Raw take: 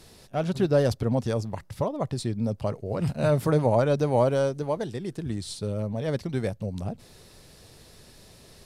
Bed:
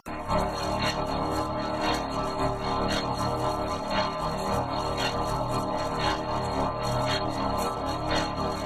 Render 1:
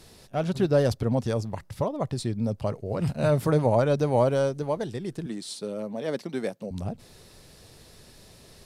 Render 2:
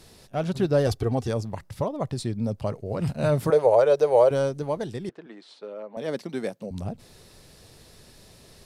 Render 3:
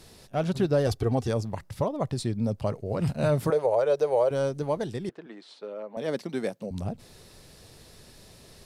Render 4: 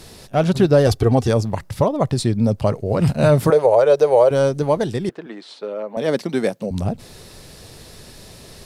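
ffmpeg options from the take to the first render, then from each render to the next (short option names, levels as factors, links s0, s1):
-filter_complex "[0:a]asettb=1/sr,asplit=3[s0][s1][s2];[s0]atrim=end=5.264[s3];[s1]atrim=start=5.26:end=6.71,asetpts=PTS-STARTPTS,afade=t=in:d=0.004:c=qsin,afade=t=out:st=1.446:d=0.004:c=qsin,highpass=f=200:w=0.5412,highpass=f=200:w=1.3066[s4];[s2]atrim=start=6.706[s5];[s3][s4]acrossfade=d=0.004:c1=hsin:c2=qsin[s6];[s6][s5]acrossfade=d=0.004:c1=qsin:c2=hsin"
-filter_complex "[0:a]asettb=1/sr,asplit=3[s0][s1][s2];[s0]atrim=end=0.874[s3];[s1]atrim=start=0.87:end=1.28,asetpts=PTS-STARTPTS,afade=t=in:d=0.004:c=qsin,afade=t=out:st=0.406:d=0.004:c=qsin,aecho=1:1:2.6:0.75,atrim=end_sample=18081[s4];[s2]atrim=start=1.276[s5];[s3][s4]acrossfade=d=0.004:c1=hsin:c2=qsin[s6];[s6][s5]acrossfade=d=0.004:c1=qsin:c2=hsin,asettb=1/sr,asplit=3[s7][s8][s9];[s7]atrim=end=3.504[s10];[s8]atrim=start=3.5:end=4.31,asetpts=PTS-STARTPTS,afade=t=in:d=0.004:c=qsin,afade=t=out:st=0.806:d=0.004:c=qsin,lowshelf=f=330:t=q:w=3:g=-11.5[s11];[s9]atrim=start=4.306[s12];[s10][s11]acrossfade=d=0.004:c1=hsin:c2=qsin[s13];[s13][s12]acrossfade=d=0.004:c1=qsin:c2=hsin,asettb=1/sr,asplit=3[s14][s15][s16];[s14]atrim=end=5.094[s17];[s15]atrim=start=5.09:end=5.97,asetpts=PTS-STARTPTS,afade=t=in:d=0.004:c=qsin,afade=t=out:st=0.876:d=0.004:c=qsin,highpass=500,lowpass=2200[s18];[s16]atrim=start=5.966[s19];[s17][s18]acrossfade=d=0.004:c1=hsin:c2=qsin[s20];[s20][s19]acrossfade=d=0.004:c1=qsin:c2=hsin"
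-af "alimiter=limit=0.188:level=0:latency=1:release=366"
-af "volume=3.16"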